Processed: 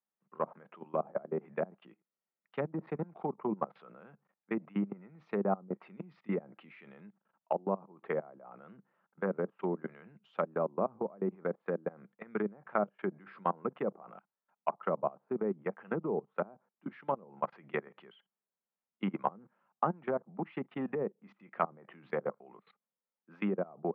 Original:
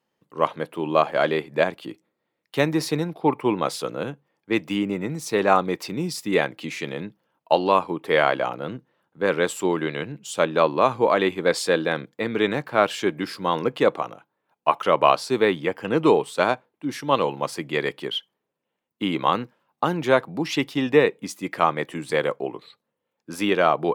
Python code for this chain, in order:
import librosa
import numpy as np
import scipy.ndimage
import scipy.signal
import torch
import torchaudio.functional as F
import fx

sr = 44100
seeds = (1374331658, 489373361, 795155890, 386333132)

y = fx.env_lowpass_down(x, sr, base_hz=450.0, full_db=-17.0)
y = fx.level_steps(y, sr, step_db=24)
y = fx.cabinet(y, sr, low_hz=160.0, low_slope=24, high_hz=2400.0, hz=(200.0, 290.0, 480.0, 740.0, 1300.0), db=(6, -10, -4, 3, 6))
y = F.gain(torch.from_numpy(y), -4.5).numpy()